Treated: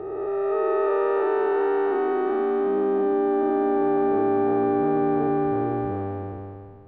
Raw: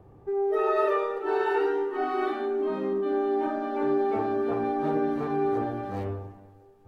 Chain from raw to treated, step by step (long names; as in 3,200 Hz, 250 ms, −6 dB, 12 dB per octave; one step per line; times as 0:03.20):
spectrum smeared in time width 818 ms
high-frequency loss of the air 380 metres
level +7 dB